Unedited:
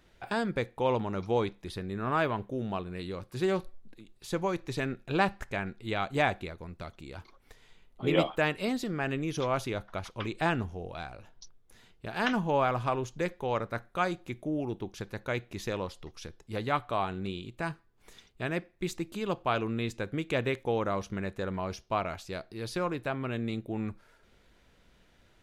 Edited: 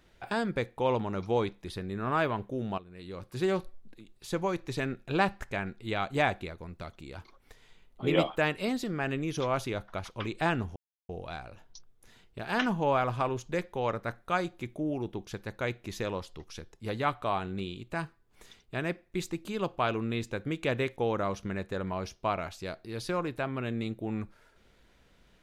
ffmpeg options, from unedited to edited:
ffmpeg -i in.wav -filter_complex "[0:a]asplit=3[link_01][link_02][link_03];[link_01]atrim=end=2.78,asetpts=PTS-STARTPTS,afade=type=out:start_time=2.776:duration=0.004:curve=hsin:silence=0.223872[link_04];[link_02]atrim=start=2.78:end=10.76,asetpts=PTS-STARTPTS,afade=type=in:duration=0.47:curve=qua:silence=0.223872,afade=type=out:start_time=7.976:duration=0.004:curve=hsin,apad=pad_dur=0.33[link_05];[link_03]atrim=start=10.76,asetpts=PTS-STARTPTS,afade=type=in:duration=0.004:curve=hsin[link_06];[link_04][link_05][link_06]concat=n=3:v=0:a=1" out.wav

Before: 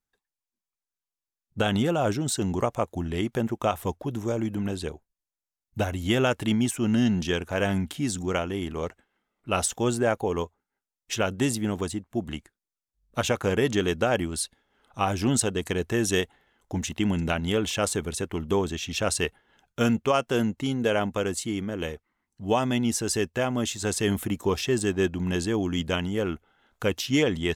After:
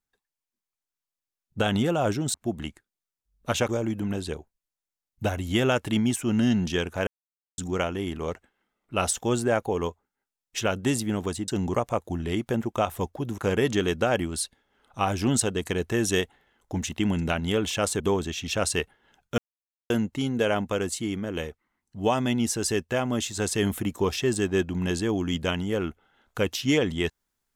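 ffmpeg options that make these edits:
ffmpeg -i in.wav -filter_complex "[0:a]asplit=10[link_01][link_02][link_03][link_04][link_05][link_06][link_07][link_08][link_09][link_10];[link_01]atrim=end=2.342[link_11];[link_02]atrim=start=12.028:end=13.382[link_12];[link_03]atrim=start=4.238:end=7.62,asetpts=PTS-STARTPTS,afade=type=out:start_time=3.378:duration=0.004:curve=hsin[link_13];[link_04]atrim=start=7.62:end=8.13,asetpts=PTS-STARTPTS,volume=0[link_14];[link_05]atrim=start=8.13:end=12.032,asetpts=PTS-STARTPTS,afade=type=in:duration=0.004:curve=hsin[link_15];[link_06]atrim=start=2.338:end=4.242[link_16];[link_07]atrim=start=13.378:end=18.002[link_17];[link_08]atrim=start=18.448:end=19.83,asetpts=PTS-STARTPTS,afade=type=out:start_time=1.378:duration=0.004:curve=hsin[link_18];[link_09]atrim=start=19.83:end=20.35,asetpts=PTS-STARTPTS,volume=0[link_19];[link_10]atrim=start=20.35,asetpts=PTS-STARTPTS,afade=type=in:duration=0.004:curve=hsin[link_20];[link_11][link_12]acrossfade=duration=0.004:curve1=hsin:curve2=hsin[link_21];[link_13][link_14][link_15]concat=n=3:v=0:a=1[link_22];[link_21][link_22]acrossfade=duration=0.004:curve1=hsin:curve2=hsin[link_23];[link_23][link_16]acrossfade=duration=0.004:curve1=hsin:curve2=hsin[link_24];[link_24][link_17]acrossfade=duration=0.004:curve1=hsin:curve2=hsin[link_25];[link_18][link_19][link_20]concat=n=3:v=0:a=1[link_26];[link_25][link_26]acrossfade=duration=0.004:curve1=hsin:curve2=hsin" out.wav

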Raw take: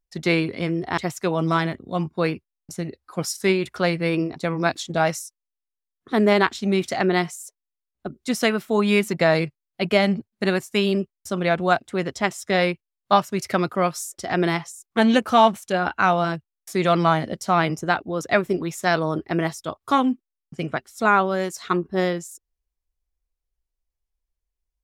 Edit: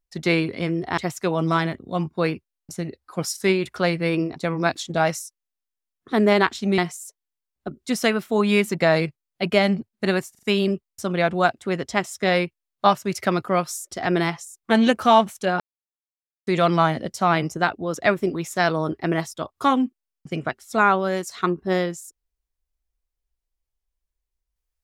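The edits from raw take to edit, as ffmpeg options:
ffmpeg -i in.wav -filter_complex "[0:a]asplit=7[link_01][link_02][link_03][link_04][link_05][link_06][link_07];[link_01]atrim=end=6.782[link_08];[link_02]atrim=start=7.168:end=10.742[link_09];[link_03]atrim=start=10.698:end=10.742[link_10];[link_04]atrim=start=10.698:end=10.742[link_11];[link_05]atrim=start=10.698:end=15.87,asetpts=PTS-STARTPTS,afade=type=out:start_time=5.168:duration=0.004:curve=hsin[link_12];[link_06]atrim=start=15.87:end=16.74,asetpts=PTS-STARTPTS,volume=0[link_13];[link_07]atrim=start=16.74,asetpts=PTS-STARTPTS,afade=type=in:duration=0.004:curve=hsin[link_14];[link_08][link_09]acrossfade=duration=0.004:curve1=hsin:curve2=hsin[link_15];[link_15][link_10]acrossfade=duration=0.004:curve1=hsin:curve2=hsin[link_16];[link_16][link_11]acrossfade=duration=0.004:curve1=hsin:curve2=hsin[link_17];[link_12][link_13][link_14]concat=n=3:v=0:a=1[link_18];[link_17][link_18]acrossfade=duration=0.004:curve1=hsin:curve2=hsin" out.wav

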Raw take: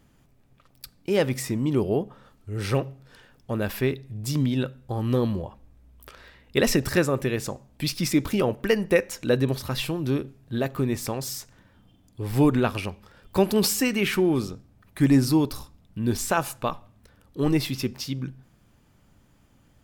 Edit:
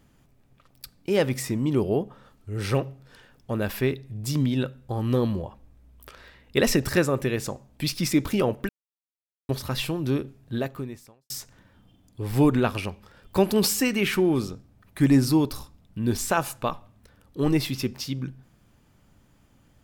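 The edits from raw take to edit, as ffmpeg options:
ffmpeg -i in.wav -filter_complex "[0:a]asplit=4[link_01][link_02][link_03][link_04];[link_01]atrim=end=8.69,asetpts=PTS-STARTPTS,afade=type=out:start_time=8.686:duration=0.004:curve=hsin[link_05];[link_02]atrim=start=8.69:end=9.49,asetpts=PTS-STARTPTS,volume=0[link_06];[link_03]atrim=start=9.49:end=11.3,asetpts=PTS-STARTPTS,afade=type=in:duration=0.004:curve=hsin,afade=type=out:start_time=1.04:duration=0.77:curve=qua[link_07];[link_04]atrim=start=11.3,asetpts=PTS-STARTPTS,afade=type=in:duration=0.004:curve=hsin[link_08];[link_05][link_06][link_07][link_08]concat=n=4:v=0:a=1" out.wav

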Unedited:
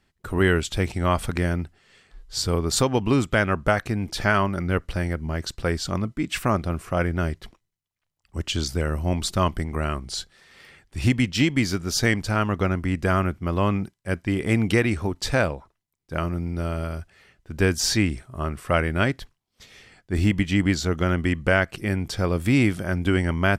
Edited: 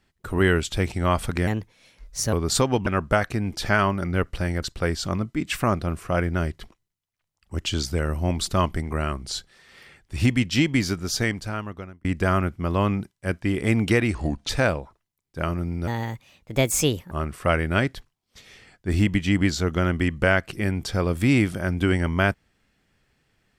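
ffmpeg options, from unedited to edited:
ffmpeg -i in.wav -filter_complex "[0:a]asplit=10[link_01][link_02][link_03][link_04][link_05][link_06][link_07][link_08][link_09][link_10];[link_01]atrim=end=1.474[link_11];[link_02]atrim=start=1.47:end=2.54,asetpts=PTS-STARTPTS,asetrate=55125,aresample=44100[link_12];[link_03]atrim=start=2.536:end=3.082[link_13];[link_04]atrim=start=3.418:end=5.182[link_14];[link_05]atrim=start=5.448:end=12.87,asetpts=PTS-STARTPTS,afade=type=out:start_time=6.272:duration=1.15[link_15];[link_06]atrim=start=12.87:end=14.974,asetpts=PTS-STARTPTS,afade=type=in:duration=0.004:curve=hsin[link_16];[link_07]atrim=start=14.97:end=15.24,asetpts=PTS-STARTPTS,asetrate=34398,aresample=44100,atrim=end_sample=15265,asetpts=PTS-STARTPTS[link_17];[link_08]atrim=start=15.236:end=16.624[link_18];[link_09]atrim=start=16.62:end=18.36,asetpts=PTS-STARTPTS,asetrate=61740,aresample=44100[link_19];[link_10]atrim=start=18.356[link_20];[link_11][link_12]acrossfade=duration=0.004:curve1=hsin:curve2=hsin[link_21];[link_21][link_13]acrossfade=duration=0.004:curve1=hsin:curve2=hsin[link_22];[link_22][link_14]acrossfade=duration=0.004:curve1=hsin:curve2=hsin[link_23];[link_15][link_16]concat=n=2:v=0:a=1[link_24];[link_23][link_24]acrossfade=duration=0.004:curve1=hsin:curve2=hsin[link_25];[link_25][link_17]acrossfade=duration=0.004:curve1=hsin:curve2=hsin[link_26];[link_26][link_18]acrossfade=duration=0.004:curve1=hsin:curve2=hsin[link_27];[link_27][link_19]acrossfade=duration=0.004:curve1=hsin:curve2=hsin[link_28];[link_28][link_20]acrossfade=duration=0.004:curve1=hsin:curve2=hsin" out.wav

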